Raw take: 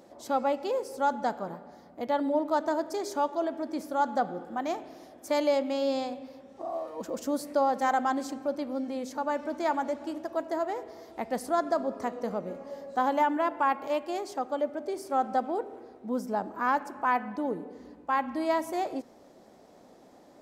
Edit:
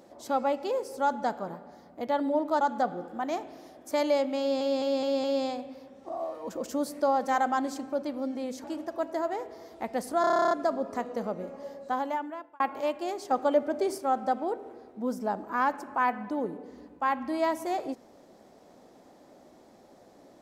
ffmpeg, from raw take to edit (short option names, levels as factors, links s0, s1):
-filter_complex "[0:a]asplit=20[s0][s1][s2][s3][s4][s5][s6][s7][s8][s9][s10][s11][s12][s13][s14][s15][s16][s17][s18][s19];[s0]atrim=end=2.612[s20];[s1]atrim=start=3.978:end=5.982[s21];[s2]atrim=start=5.768:end=5.982[s22];[s3]atrim=start=5.768:end=5.982[s23];[s4]atrim=start=5.768:end=5.982[s24];[s5]atrim=start=5.768:end=9.172[s25];[s6]atrim=start=10.008:end=11.612[s26];[s7]atrim=start=11.578:end=11.612[s27];[s8]atrim=start=11.578:end=11.612[s28];[s9]atrim=start=11.578:end=11.612[s29];[s10]atrim=start=11.578:end=11.612[s30];[s11]atrim=start=11.578:end=11.612[s31];[s12]atrim=start=11.578:end=11.612[s32];[s13]atrim=start=11.578:end=11.612[s33];[s14]atrim=start=11.578:end=11.612[s34];[s15]atrim=start=11.578:end=11.612[s35];[s16]atrim=start=11.578:end=13.67,asetpts=PTS-STARTPTS,afade=t=out:st=1.142:d=0.95[s36];[s17]atrim=start=13.67:end=14.382,asetpts=PTS-STARTPTS,afade=t=in:d=0.004:c=hsin[s37];[s18]atrim=start=14.378:end=15.052,asetpts=PTS-STARTPTS,volume=1.88[s38];[s19]atrim=start=15.048[s39];[s20][s21]acrossfade=d=0.004:c1=hsin:c2=hsin[s40];[s40][s22]acrossfade=d=0.004:c1=hsin:c2=hsin[s41];[s41][s23]acrossfade=d=0.004:c1=hsin:c2=hsin[s42];[s42][s24]acrossfade=d=0.004:c1=hsin:c2=hsin[s43];[s43][s25]acrossfade=d=0.004:c1=hsin:c2=hsin[s44];[s44][s26]acrossfade=d=0.004:c1=hsin:c2=hsin[s45];[s45][s27]acrossfade=d=0.004:c1=hsin:c2=hsin[s46];[s46][s28]acrossfade=d=0.004:c1=hsin:c2=hsin[s47];[s47][s29]acrossfade=d=0.004:c1=hsin:c2=hsin[s48];[s48][s30]acrossfade=d=0.004:c1=hsin:c2=hsin[s49];[s49][s31]acrossfade=d=0.004:c1=hsin:c2=hsin[s50];[s50][s32]acrossfade=d=0.004:c1=hsin:c2=hsin[s51];[s51][s33]acrossfade=d=0.004:c1=hsin:c2=hsin[s52];[s52][s34]acrossfade=d=0.004:c1=hsin:c2=hsin[s53];[s53][s35]acrossfade=d=0.004:c1=hsin:c2=hsin[s54];[s36][s37]concat=n=2:v=0:a=1[s55];[s54][s55]acrossfade=d=0.004:c1=hsin:c2=hsin[s56];[s56][s38]acrossfade=d=0.004:c1=hsin:c2=hsin[s57];[s57][s39]acrossfade=d=0.004:c1=hsin:c2=hsin"